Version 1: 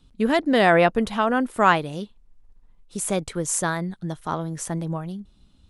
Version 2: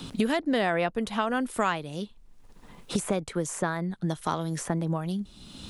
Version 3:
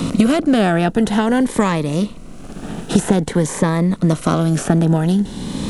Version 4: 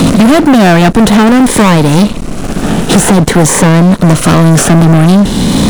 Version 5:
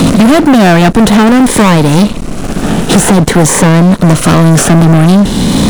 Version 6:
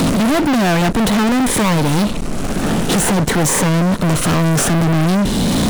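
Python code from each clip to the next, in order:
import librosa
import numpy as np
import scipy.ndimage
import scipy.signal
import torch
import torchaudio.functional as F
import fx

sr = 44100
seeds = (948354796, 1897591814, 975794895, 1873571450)

y1 = fx.band_squash(x, sr, depth_pct=100)
y1 = y1 * librosa.db_to_amplitude(-6.0)
y2 = fx.bin_compress(y1, sr, power=0.6)
y2 = fx.low_shelf(y2, sr, hz=450.0, db=7.5)
y2 = fx.notch_cascade(y2, sr, direction='rising', hz=0.5)
y2 = y2 * librosa.db_to_amplitude(6.0)
y3 = fx.leveller(y2, sr, passes=5)
y4 = y3
y5 = 10.0 ** (-13.0 / 20.0) * np.tanh(y4 / 10.0 ** (-13.0 / 20.0))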